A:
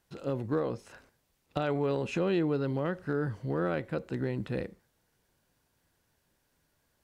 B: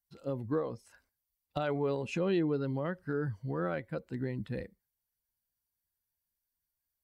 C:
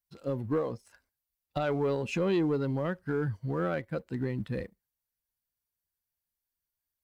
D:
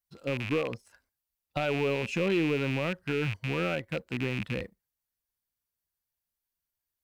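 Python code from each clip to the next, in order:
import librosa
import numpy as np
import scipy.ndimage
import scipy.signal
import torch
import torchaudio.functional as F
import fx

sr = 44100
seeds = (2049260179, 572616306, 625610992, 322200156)

y1 = fx.bin_expand(x, sr, power=1.5)
y2 = fx.leveller(y1, sr, passes=1)
y3 = fx.rattle_buzz(y2, sr, strikes_db=-37.0, level_db=-24.0)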